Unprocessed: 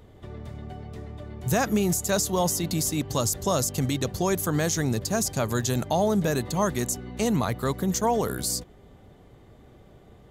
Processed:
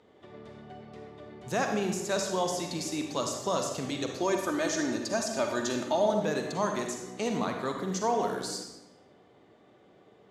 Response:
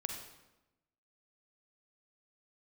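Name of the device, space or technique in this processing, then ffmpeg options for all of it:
supermarket ceiling speaker: -filter_complex "[0:a]asettb=1/sr,asplit=3[a][b][c];[a]atrim=end=4.204[d];[b]atrim=start=4.2:end=6.13,asetpts=PTS-STARTPTS,afade=t=in:d=0.004:c=qsin,afade=t=out:st=1.926:d=0.004:c=qsin,aecho=1:1:3.3:0.64,atrim=end_sample=85113[e];[c]atrim=start=6.126[f];[d][e]acrossfade=d=0.004:c1=hsin:c2=qsin[g];[g][f]acrossfade=d=0.004:c1=qsin:c2=hsin,highpass=260,lowpass=5.6k[h];[1:a]atrim=start_sample=2205[i];[h][i]afir=irnorm=-1:irlink=0,volume=-3dB"

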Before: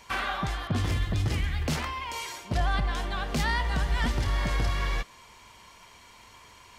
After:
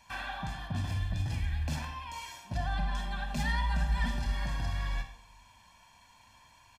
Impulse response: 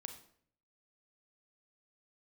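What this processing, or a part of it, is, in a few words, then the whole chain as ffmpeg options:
microphone above a desk: -filter_complex "[0:a]aecho=1:1:1.2:0.76[a];[1:a]atrim=start_sample=2205[b];[a][b]afir=irnorm=-1:irlink=0,asettb=1/sr,asplit=3[c][d][e];[c]atrim=end=2.794[f];[d]atrim=start=2.79:end=4.46,asetpts=PTS-STARTPTS,afade=t=in:d=0.004:c=qsin,afade=t=out:st=1.666:d=0.004:c=qsin,aecho=1:1:5:0.67,atrim=end_sample=73647[g];[e]atrim=start=4.456[h];[f][g]acrossfade=d=0.004:c1=hsin:c2=qsin[i];[i][h]acrossfade=d=0.004:c1=qsin:c2=hsin,volume=-6dB"

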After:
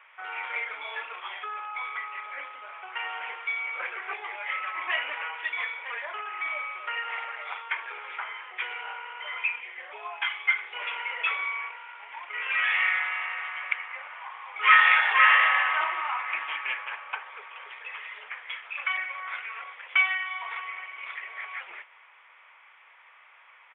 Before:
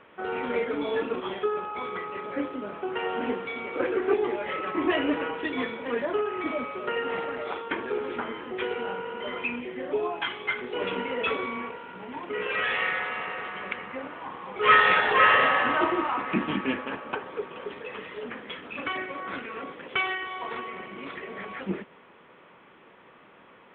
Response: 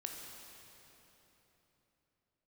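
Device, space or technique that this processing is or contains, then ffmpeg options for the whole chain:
musical greeting card: -af "aresample=8000,aresample=44100,highpass=f=830:w=0.5412,highpass=f=830:w=1.3066,equalizer=f=2.2k:t=o:w=0.42:g=9,volume=-1.5dB"

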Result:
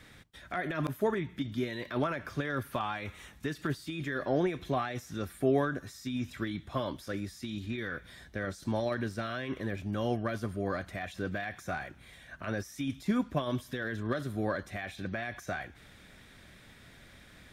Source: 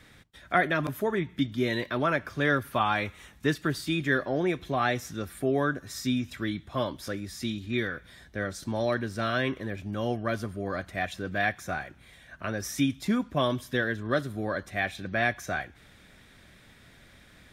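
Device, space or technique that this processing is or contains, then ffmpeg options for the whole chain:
de-esser from a sidechain: -filter_complex "[0:a]asplit=2[a][b];[b]highpass=4.1k,apad=whole_len=773042[c];[a][c]sidechaincompress=threshold=-49dB:ratio=4:attack=0.88:release=44"

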